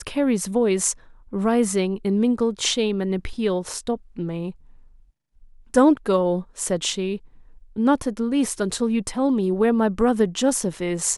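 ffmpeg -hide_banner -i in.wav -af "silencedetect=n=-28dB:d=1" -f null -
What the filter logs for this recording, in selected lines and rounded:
silence_start: 4.50
silence_end: 5.74 | silence_duration: 1.24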